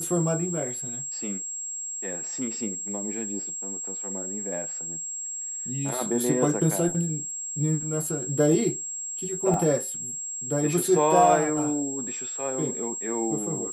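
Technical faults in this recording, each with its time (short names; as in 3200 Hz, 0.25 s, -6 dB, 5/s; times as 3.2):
tone 7600 Hz -31 dBFS
9.54 gap 2.3 ms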